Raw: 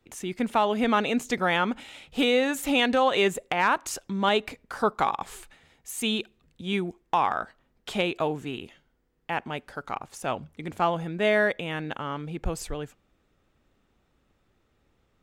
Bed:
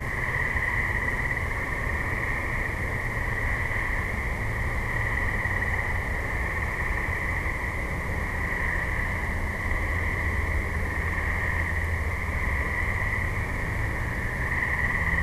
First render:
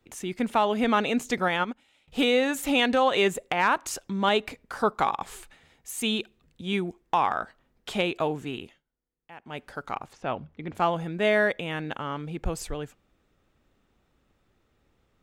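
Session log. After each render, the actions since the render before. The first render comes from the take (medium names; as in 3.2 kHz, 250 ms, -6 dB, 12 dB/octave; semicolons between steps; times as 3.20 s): 1.48–2.08 s: upward expansion 2.5:1, over -35 dBFS; 8.61–9.63 s: dip -17 dB, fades 0.21 s; 10.13–10.75 s: distance through air 210 m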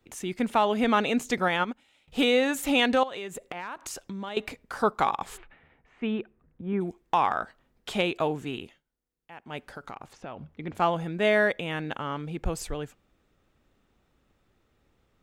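3.03–4.37 s: compression 8:1, threshold -33 dBFS; 5.36–6.80 s: low-pass 2.8 kHz -> 1.5 kHz 24 dB/octave; 9.64–10.46 s: compression, threshold -35 dBFS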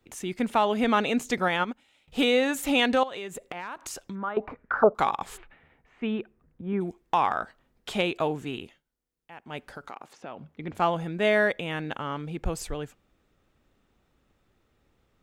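4.15–4.95 s: touch-sensitive low-pass 580–2000 Hz down, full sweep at -22.5 dBFS; 9.87–10.57 s: high-pass 300 Hz -> 120 Hz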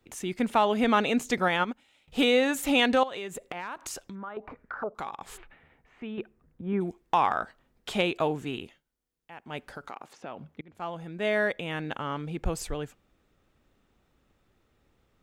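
4.07–6.18 s: compression 2:1, threshold -41 dBFS; 10.61–12.41 s: fade in equal-power, from -23.5 dB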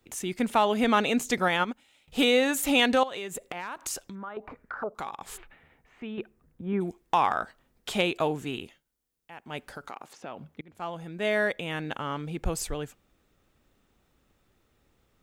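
treble shelf 5.7 kHz +7 dB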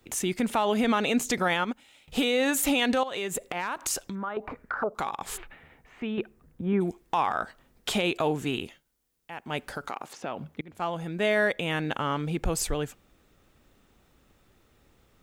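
in parallel at -0.5 dB: compression, threshold -32 dBFS, peak gain reduction 13.5 dB; on the sum: peak limiter -15.5 dBFS, peak gain reduction 6.5 dB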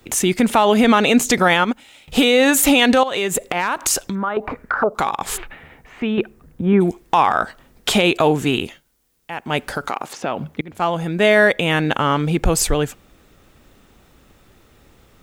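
trim +11 dB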